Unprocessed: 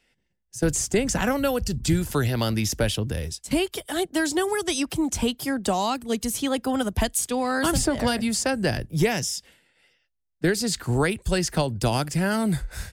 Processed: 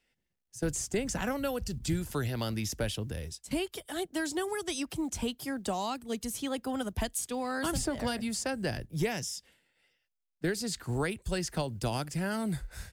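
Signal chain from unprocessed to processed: companded quantiser 8-bit; gain -9 dB

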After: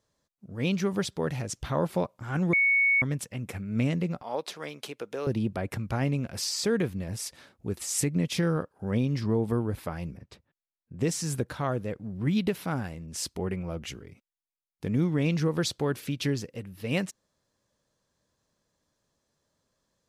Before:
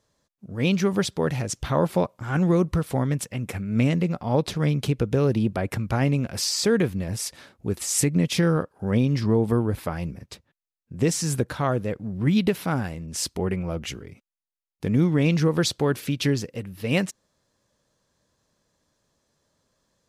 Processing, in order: 2.53–3.02 bleep 2220 Hz -14 dBFS; 4.22–5.27 HPF 520 Hz 12 dB/oct; 10.17–11.01 high shelf 4500 Hz -12 dB; gain -5.5 dB

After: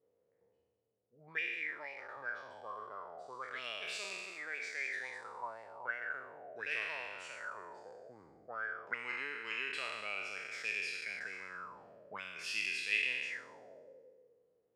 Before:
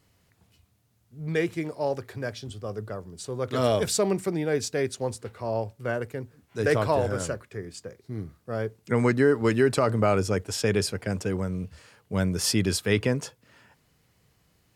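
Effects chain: spectral trails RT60 1.70 s; 4.33–4.96 HPF 280 Hz 6 dB/oct; auto-wah 470–2600 Hz, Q 9.4, up, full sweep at -20 dBFS; gain +2.5 dB

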